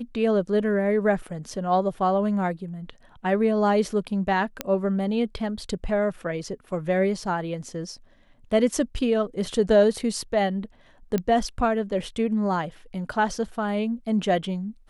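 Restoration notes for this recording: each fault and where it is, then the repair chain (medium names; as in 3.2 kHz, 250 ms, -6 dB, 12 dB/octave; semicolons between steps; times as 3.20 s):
4.61 s: pop -10 dBFS
11.18 s: pop -13 dBFS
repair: de-click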